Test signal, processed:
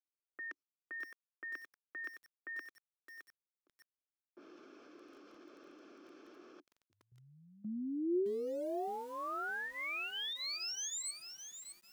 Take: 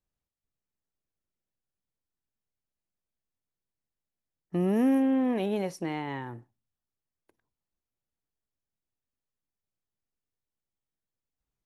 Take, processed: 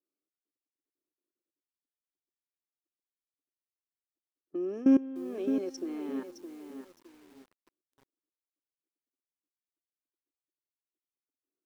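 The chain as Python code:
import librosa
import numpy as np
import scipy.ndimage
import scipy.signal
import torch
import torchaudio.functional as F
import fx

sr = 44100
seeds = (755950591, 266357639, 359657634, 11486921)

y = fx.cabinet(x, sr, low_hz=270.0, low_slope=24, high_hz=7200.0, hz=(290.0, 780.0, 1200.0, 2000.0, 3800.0, 5600.0), db=(9, -8, 4, -8, -4, 9))
y = fx.env_lowpass(y, sr, base_hz=960.0, full_db=-30.0)
y = fx.level_steps(y, sr, step_db=20)
y = fx.peak_eq(y, sr, hz=360.0, db=9.0, octaves=0.36)
y = fx.notch_comb(y, sr, f0_hz=950.0)
y = fx.echo_crushed(y, sr, ms=614, feedback_pct=35, bits=9, wet_db=-8.0)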